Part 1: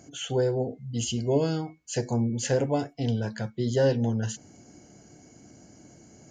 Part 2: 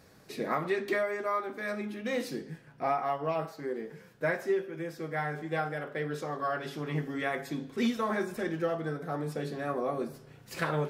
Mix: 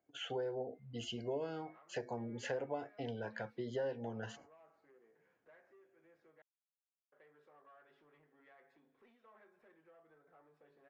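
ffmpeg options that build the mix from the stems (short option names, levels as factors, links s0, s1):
-filter_complex "[0:a]agate=range=0.0631:threshold=0.00562:ratio=16:detection=peak,volume=0.794[s0];[1:a]acompressor=threshold=0.00562:ratio=3,asoftclip=type=tanh:threshold=0.0106,adelay=1250,volume=0.158,asplit=3[s1][s2][s3];[s1]atrim=end=6.42,asetpts=PTS-STARTPTS,afade=t=out:st=6.416:d=0.004:c=hsin[s4];[s2]atrim=start=6.42:end=7.12,asetpts=PTS-STARTPTS,volume=0[s5];[s3]atrim=start=7.12,asetpts=PTS-STARTPTS,afade=t=in:d=0.004:c=hsin[s6];[s4][s5][s6]concat=n=3:v=0:a=1[s7];[s0][s7]amix=inputs=2:normalize=0,acrossover=split=380 2900:gain=0.178 1 0.0794[s8][s9][s10];[s8][s9][s10]amix=inputs=3:normalize=0,acompressor=threshold=0.0112:ratio=3"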